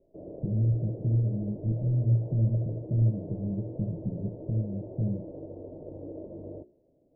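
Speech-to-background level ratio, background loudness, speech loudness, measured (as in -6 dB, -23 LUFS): 13.0 dB, -42.5 LUFS, -29.5 LUFS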